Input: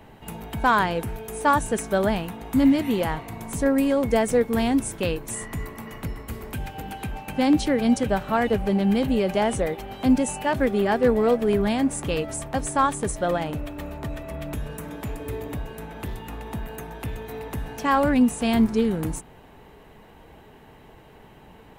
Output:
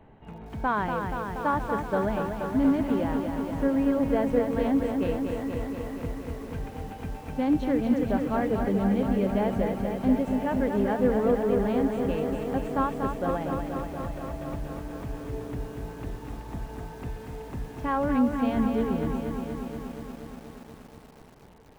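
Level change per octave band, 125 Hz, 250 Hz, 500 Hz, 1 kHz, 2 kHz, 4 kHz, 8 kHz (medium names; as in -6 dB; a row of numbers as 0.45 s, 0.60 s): -2.5 dB, -2.5 dB, -3.5 dB, -5.0 dB, -7.5 dB, -12.0 dB, under -15 dB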